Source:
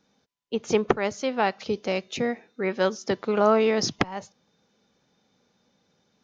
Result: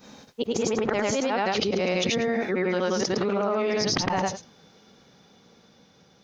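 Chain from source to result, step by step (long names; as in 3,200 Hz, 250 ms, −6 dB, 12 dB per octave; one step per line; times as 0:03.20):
every overlapping window played backwards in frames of 215 ms
source passing by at 0:01.44, 11 m/s, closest 2.4 metres
envelope flattener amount 100%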